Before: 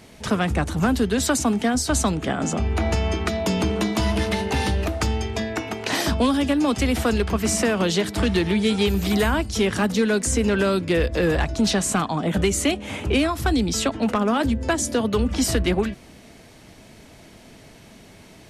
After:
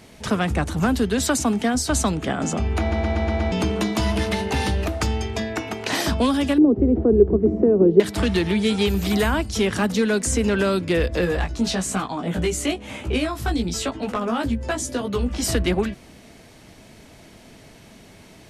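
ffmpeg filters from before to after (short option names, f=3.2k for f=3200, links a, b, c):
-filter_complex "[0:a]asettb=1/sr,asplit=3[a][b][c];[a]atrim=end=6.584[d];[b]atrim=start=6.58:end=8,asetpts=PTS-STARTPTS,afade=t=in:d=0.004:c=qsin,afade=t=out:st=1.416:d=0.004:c=qsin,lowpass=f=390:t=q:w=4.5[e];[c]atrim=start=7.996[f];[d][e]acrossfade=d=0.004:c1=hsin:c2=qsin[g];[g][f]acrossfade=d=0.004:c1=qsin:c2=hsin,asplit=3[h][i][j];[h]afade=t=out:st=11.24:d=0.02[k];[i]flanger=delay=15.5:depth=2:speed=1,afade=t=in:st=11.24:d=0.02,afade=t=out:st=15.42:d=0.02[l];[j]afade=t=in:st=15.42:d=0.02[m];[k][l][m]amix=inputs=3:normalize=0,asplit=7[n][o][p][q][r][s][t];[n]atrim=end=2.922[u];[o]atrim=start=2.798:end=2.922[v];[p]atrim=start=2.798:end=2.922[w];[q]atrim=start=2.798:end=2.922[x];[r]atrim=start=2.798:end=2.922[y];[s]atrim=start=2.798:end=2.922[z];[t]atrim=start=3.518[aa];[u][v]acrossfade=d=0.004:c1=hsin:c2=hsin[ab];[ab][w]acrossfade=d=0.004:c1=hsin:c2=hsin[ac];[ac][x]acrossfade=d=0.004:c1=hsin:c2=hsin[ad];[ad][y]acrossfade=d=0.004:c1=hsin:c2=hsin[ae];[ae][z]acrossfade=d=0.004:c1=hsin:c2=hsin[af];[af][aa]acrossfade=d=0.004:c1=hsin:c2=hsin"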